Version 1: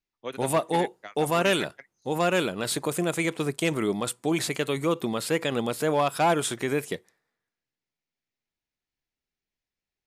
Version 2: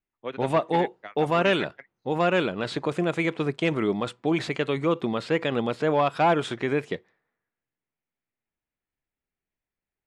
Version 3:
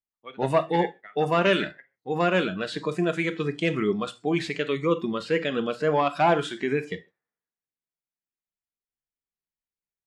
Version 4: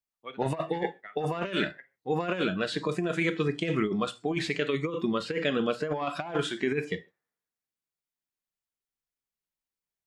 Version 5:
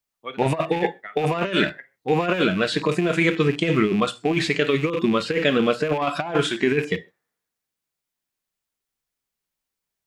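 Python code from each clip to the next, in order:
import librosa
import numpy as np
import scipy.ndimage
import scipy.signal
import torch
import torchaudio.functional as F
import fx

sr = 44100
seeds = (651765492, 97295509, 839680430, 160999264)

y1 = scipy.signal.sosfilt(scipy.signal.butter(2, 3300.0, 'lowpass', fs=sr, output='sos'), x)
y1 = fx.env_lowpass(y1, sr, base_hz=2500.0, full_db=-23.5)
y1 = F.gain(torch.from_numpy(y1), 1.5).numpy()
y2 = fx.rev_gated(y1, sr, seeds[0], gate_ms=170, shape='falling', drr_db=9.5)
y2 = fx.noise_reduce_blind(y2, sr, reduce_db=13)
y3 = fx.over_compress(y2, sr, threshold_db=-25.0, ratio=-0.5)
y3 = F.gain(torch.from_numpy(y3), -2.0).numpy()
y4 = fx.rattle_buzz(y3, sr, strikes_db=-42.0, level_db=-32.0)
y4 = F.gain(torch.from_numpy(y4), 8.0).numpy()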